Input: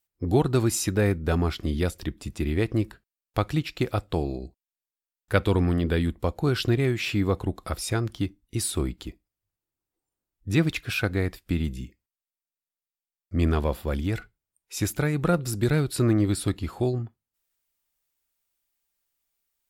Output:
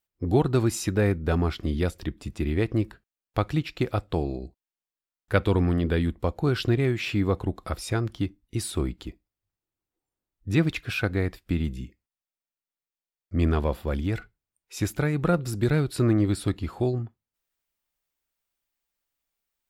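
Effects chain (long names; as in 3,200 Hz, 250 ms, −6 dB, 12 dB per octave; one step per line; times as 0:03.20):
parametric band 13,000 Hz −6.5 dB 2 octaves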